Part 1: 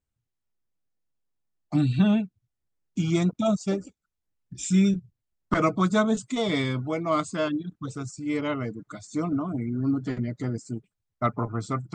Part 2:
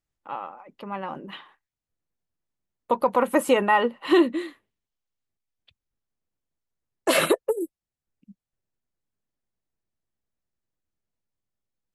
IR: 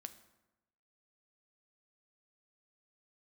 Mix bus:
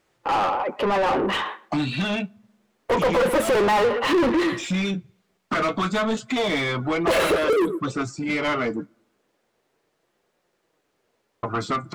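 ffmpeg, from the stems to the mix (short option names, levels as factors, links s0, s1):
-filter_complex "[0:a]acrossover=split=2000|4000[s0][s1][s2];[s0]acompressor=threshold=0.0282:ratio=4[s3];[s1]acompressor=threshold=0.01:ratio=4[s4];[s2]acompressor=threshold=0.00158:ratio=4[s5];[s3][s4][s5]amix=inputs=3:normalize=0,volume=0.794,asplit=3[s6][s7][s8];[s6]atrim=end=8.86,asetpts=PTS-STARTPTS,afade=t=out:st=8.856:d=0.004:c=hsin[s9];[s7]atrim=start=8.86:end=11.43,asetpts=PTS-STARTPTS,volume=0[s10];[s8]atrim=start=11.43,asetpts=PTS-STARTPTS,afade=t=in:d=0.004:c=hsin[s11];[s9][s10][s11]concat=n=3:v=0:a=1,asplit=2[s12][s13];[s13]volume=0.126[s14];[1:a]equalizer=f=440:t=o:w=0.88:g=8.5,asoftclip=type=tanh:threshold=0.126,volume=1.26,asplit=4[s15][s16][s17][s18];[s16]volume=0.168[s19];[s17]volume=0.0891[s20];[s18]apad=whole_len=526904[s21];[s12][s21]sidechaincompress=threshold=0.0794:ratio=8:attack=16:release=881[s22];[2:a]atrim=start_sample=2205[s23];[s14][s19]amix=inputs=2:normalize=0[s24];[s24][s23]afir=irnorm=-1:irlink=0[s25];[s20]aecho=0:1:126:1[s26];[s22][s15][s25][s26]amix=inputs=4:normalize=0,flanger=delay=5.5:depth=7.1:regen=-49:speed=0.29:shape=sinusoidal,asplit=2[s27][s28];[s28]highpass=f=720:p=1,volume=44.7,asoftclip=type=tanh:threshold=0.224[s29];[s27][s29]amix=inputs=2:normalize=0,lowpass=f=2100:p=1,volume=0.501"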